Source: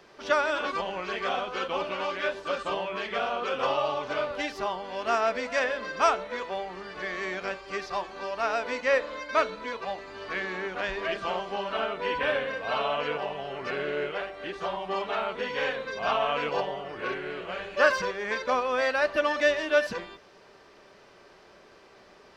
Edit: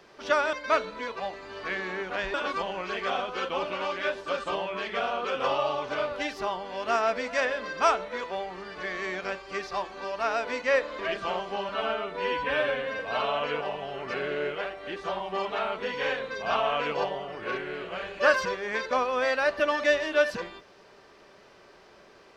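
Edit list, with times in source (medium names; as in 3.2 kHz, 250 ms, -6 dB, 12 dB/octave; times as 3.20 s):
9.18–10.99 s: move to 0.53 s
11.69–12.56 s: stretch 1.5×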